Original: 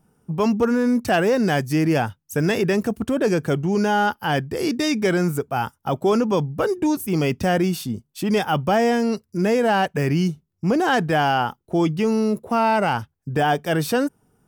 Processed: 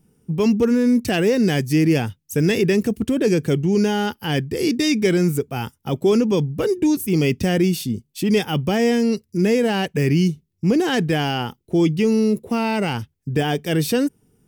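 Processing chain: high-order bell 960 Hz -10 dB; trim +3 dB

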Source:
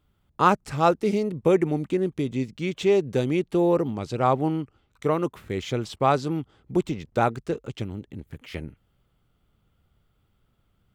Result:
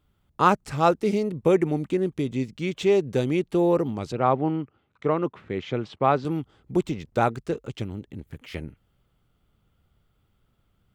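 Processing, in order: 4.12–6.25 s: band-pass 110–2900 Hz

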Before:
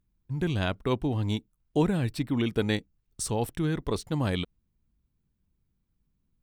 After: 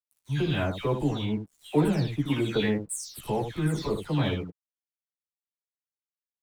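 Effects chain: delay that grows with frequency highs early, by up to 300 ms; crossover distortion -55 dBFS; early reflections 14 ms -4 dB, 76 ms -7 dB

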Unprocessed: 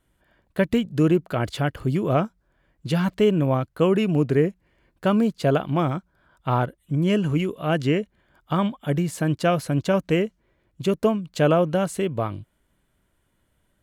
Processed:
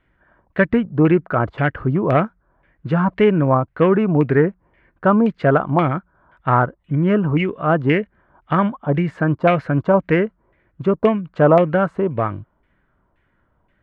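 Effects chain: self-modulated delay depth 0.058 ms; LFO low-pass saw down 1.9 Hz 910–2300 Hz; trim +4 dB

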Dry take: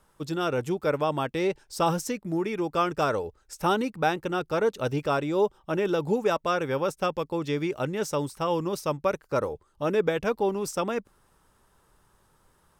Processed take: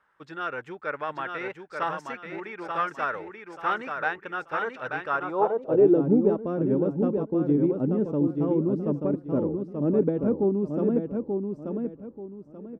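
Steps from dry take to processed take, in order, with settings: tilt EQ -2.5 dB/octave; feedback delay 884 ms, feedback 29%, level -5 dB; Chebyshev shaper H 2 -16 dB, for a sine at -7.5 dBFS; band-pass sweep 1.7 kHz -> 260 Hz, 5.06–6.06 s; trim +6 dB

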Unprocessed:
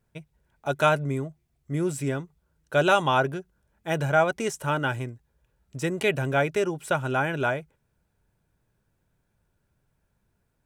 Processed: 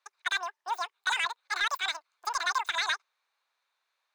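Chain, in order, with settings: high-pass 300 Hz 24 dB/octave; peak limiter -17 dBFS, peak gain reduction 10.5 dB; overdrive pedal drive 8 dB, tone 1.2 kHz, clips at -17 dBFS; wide varispeed 2.57×

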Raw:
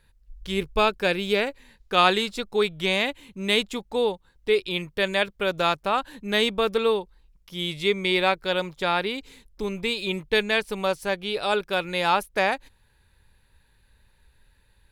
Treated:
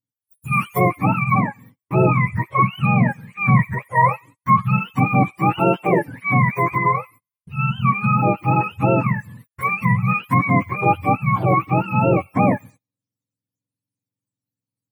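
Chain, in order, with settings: spectrum inverted on a logarithmic axis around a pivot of 680 Hz; feedback echo behind a high-pass 91 ms, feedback 50%, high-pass 2.1 kHz, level -20.5 dB; dynamic bell 1.8 kHz, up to +7 dB, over -40 dBFS, Q 1; 5.59–6.08 s: Chebyshev high-pass 170 Hz, order 3; in parallel at +3 dB: peak limiter -13.5 dBFS, peak gain reduction 8 dB; on the sum: gain riding within 5 dB 0.5 s; gate -41 dBFS, range -33 dB; trim -1.5 dB

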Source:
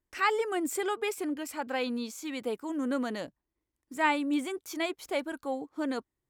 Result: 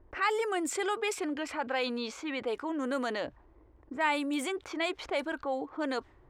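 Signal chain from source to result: level-controlled noise filter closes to 750 Hz, open at -25 dBFS; peaking EQ 190 Hz -12 dB 1.3 oct; level flattener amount 50%; trim -2.5 dB

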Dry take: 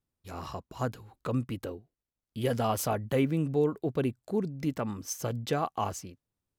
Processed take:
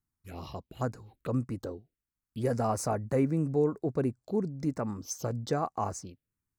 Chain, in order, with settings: touch-sensitive phaser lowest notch 540 Hz, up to 3.2 kHz, full sweep at -31.5 dBFS

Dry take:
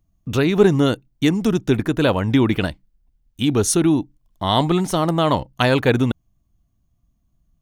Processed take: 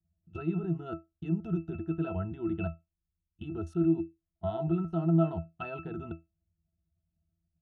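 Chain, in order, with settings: level held to a coarse grid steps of 23 dB; pitch-class resonator E, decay 0.2 s; dynamic bell 1.1 kHz, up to +6 dB, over -57 dBFS, Q 2.1; trim +2.5 dB

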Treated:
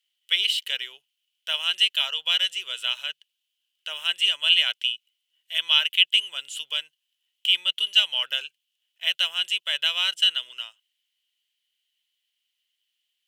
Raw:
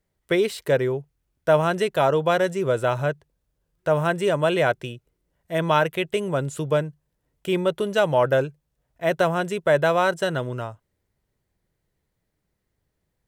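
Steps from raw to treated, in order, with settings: resonant high-pass 3 kHz, resonance Q 13

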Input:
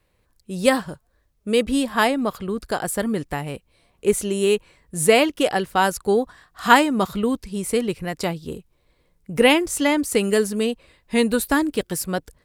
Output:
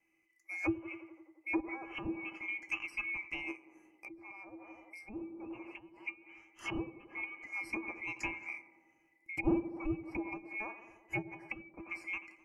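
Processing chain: split-band scrambler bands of 2 kHz; treble shelf 11 kHz +4 dB; feedback comb 330 Hz, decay 0.18 s, harmonics odd, mix 80%; tape echo 88 ms, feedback 81%, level -12 dB, low-pass 1.4 kHz; low-pass that closes with the level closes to 400 Hz, closed at -26.5 dBFS; treble shelf 4 kHz -5.5 dB; 3.51–5.98 s: compression 5:1, threshold -50 dBFS, peak gain reduction 16 dB; Butterworth band-stop 3.6 kHz, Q 2; small resonant body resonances 330/800/1200/2600 Hz, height 12 dB, ringing for 95 ms; trim +1 dB

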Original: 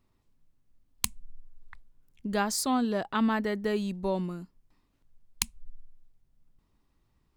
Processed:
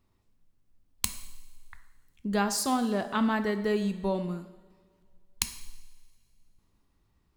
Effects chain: two-slope reverb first 0.89 s, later 2.4 s, from -17 dB, DRR 8.5 dB

